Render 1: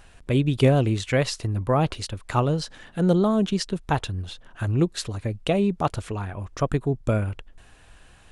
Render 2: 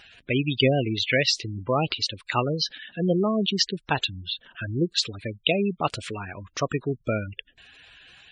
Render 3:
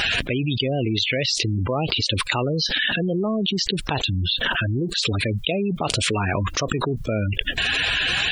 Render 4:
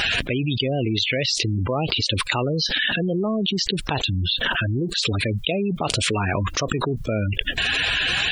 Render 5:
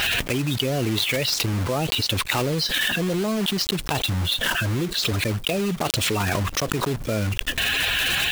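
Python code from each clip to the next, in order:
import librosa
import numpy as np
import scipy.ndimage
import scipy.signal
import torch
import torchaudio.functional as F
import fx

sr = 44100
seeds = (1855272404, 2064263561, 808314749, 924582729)

y1 = fx.weighting(x, sr, curve='D')
y1 = fx.spec_gate(y1, sr, threshold_db=-15, keep='strong')
y1 = y1 * 10.0 ** (-1.0 / 20.0)
y2 = fx.dynamic_eq(y1, sr, hz=1600.0, q=1.3, threshold_db=-41.0, ratio=4.0, max_db=-7)
y2 = fx.env_flatten(y2, sr, amount_pct=100)
y2 = y2 * 10.0 ** (-5.0 / 20.0)
y3 = y2
y4 = fx.block_float(y3, sr, bits=3)
y4 = y4 * 10.0 ** (-1.0 / 20.0)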